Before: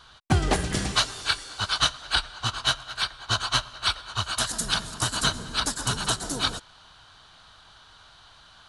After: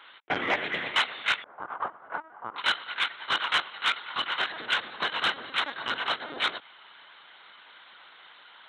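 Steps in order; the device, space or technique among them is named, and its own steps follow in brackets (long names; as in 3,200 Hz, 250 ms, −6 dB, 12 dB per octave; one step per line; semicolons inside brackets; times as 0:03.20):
0:01.43–0:02.58: low-pass filter 1,100 Hz 24 dB per octave
talking toy (linear-prediction vocoder at 8 kHz; high-pass filter 410 Hz 12 dB per octave; parametric band 2,100 Hz +10.5 dB 0.48 octaves; soft clipping −14.5 dBFS, distortion −20 dB)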